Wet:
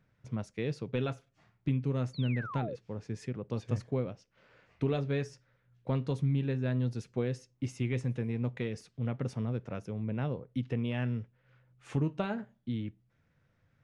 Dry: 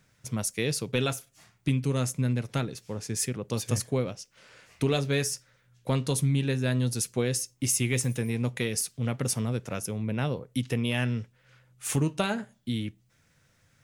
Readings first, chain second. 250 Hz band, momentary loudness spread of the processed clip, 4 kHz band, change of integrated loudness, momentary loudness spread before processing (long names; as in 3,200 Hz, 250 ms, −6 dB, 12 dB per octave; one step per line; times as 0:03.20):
−4.0 dB, 9 LU, −14.5 dB, −5.5 dB, 9 LU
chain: sound drawn into the spectrogram fall, 0:02.13–0:02.76, 460–4,700 Hz −34 dBFS
head-to-tape spacing loss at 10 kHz 31 dB
level −3.5 dB